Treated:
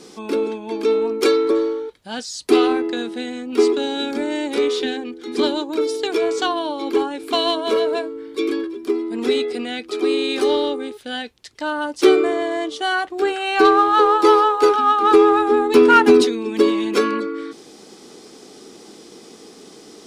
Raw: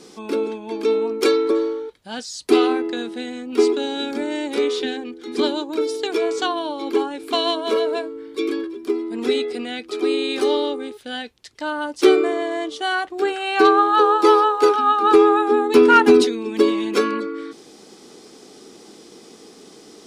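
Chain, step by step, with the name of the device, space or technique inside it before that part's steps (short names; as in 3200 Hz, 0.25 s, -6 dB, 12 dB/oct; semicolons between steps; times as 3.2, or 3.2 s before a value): parallel distortion (in parallel at -12 dB: hard clip -20 dBFS, distortion -5 dB)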